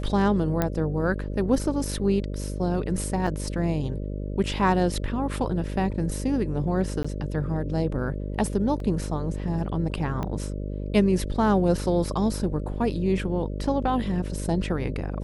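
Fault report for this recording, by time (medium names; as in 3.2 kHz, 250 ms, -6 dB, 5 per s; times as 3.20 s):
buzz 50 Hz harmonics 12 -31 dBFS
0.62 s: pop -10 dBFS
3.27 s: dropout 2.9 ms
7.03–7.04 s: dropout 15 ms
8.80 s: dropout 2.4 ms
10.23 s: pop -17 dBFS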